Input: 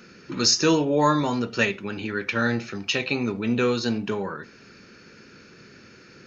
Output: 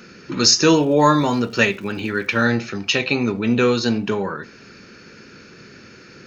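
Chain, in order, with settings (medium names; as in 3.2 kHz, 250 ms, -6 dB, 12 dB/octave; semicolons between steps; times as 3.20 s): 0.75–2.44 s: crackle 330 per s -44 dBFS; trim +5.5 dB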